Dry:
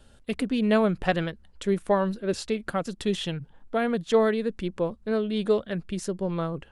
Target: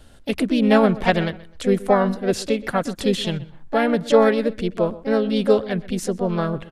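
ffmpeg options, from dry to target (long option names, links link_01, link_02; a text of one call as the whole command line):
ffmpeg -i in.wav -filter_complex "[0:a]asplit=2[link_01][link_02];[link_02]adelay=127,lowpass=frequency=3400:poles=1,volume=-18.5dB,asplit=2[link_03][link_04];[link_04]adelay=127,lowpass=frequency=3400:poles=1,volume=0.29[link_05];[link_01][link_03][link_05]amix=inputs=3:normalize=0,asplit=2[link_06][link_07];[link_07]asetrate=55563,aresample=44100,atempo=0.793701,volume=-7dB[link_08];[link_06][link_08]amix=inputs=2:normalize=0,volume=5.5dB" out.wav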